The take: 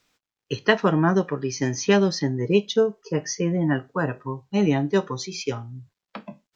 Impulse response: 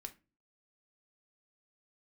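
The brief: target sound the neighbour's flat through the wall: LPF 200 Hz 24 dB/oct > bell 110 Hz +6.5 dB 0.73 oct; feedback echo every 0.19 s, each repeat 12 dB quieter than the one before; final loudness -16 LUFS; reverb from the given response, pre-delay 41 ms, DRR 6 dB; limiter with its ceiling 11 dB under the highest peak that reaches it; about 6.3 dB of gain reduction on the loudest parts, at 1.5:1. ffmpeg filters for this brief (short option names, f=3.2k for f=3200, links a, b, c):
-filter_complex "[0:a]acompressor=threshold=-31dB:ratio=1.5,alimiter=limit=-20dB:level=0:latency=1,aecho=1:1:190|380|570:0.251|0.0628|0.0157,asplit=2[a][b];[1:a]atrim=start_sample=2205,adelay=41[c];[b][c]afir=irnorm=-1:irlink=0,volume=-1.5dB[d];[a][d]amix=inputs=2:normalize=0,lowpass=f=200:w=0.5412,lowpass=f=200:w=1.3066,equalizer=f=110:t=o:w=0.73:g=6.5,volume=17.5dB"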